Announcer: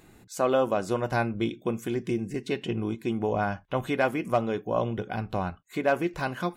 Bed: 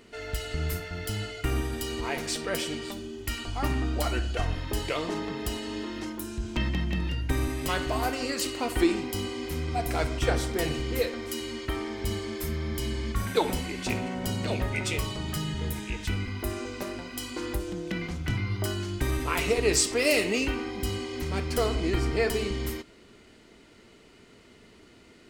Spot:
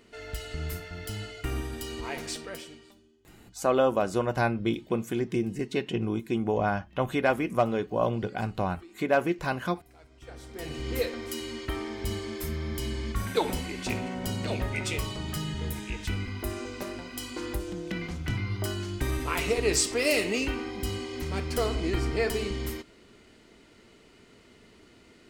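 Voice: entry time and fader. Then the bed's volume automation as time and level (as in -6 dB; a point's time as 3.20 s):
3.25 s, +0.5 dB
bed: 2.31 s -4 dB
3.22 s -27.5 dB
10.08 s -27.5 dB
10.89 s -1.5 dB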